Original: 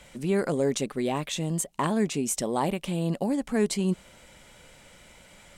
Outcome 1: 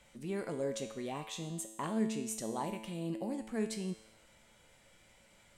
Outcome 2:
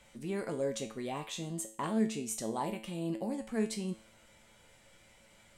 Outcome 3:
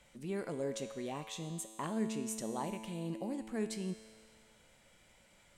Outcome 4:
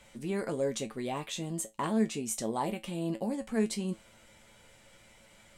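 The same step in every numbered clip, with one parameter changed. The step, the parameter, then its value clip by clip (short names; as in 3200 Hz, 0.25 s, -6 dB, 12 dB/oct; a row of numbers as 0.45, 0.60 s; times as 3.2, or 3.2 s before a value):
resonator, decay: 0.96, 0.42, 2, 0.17 s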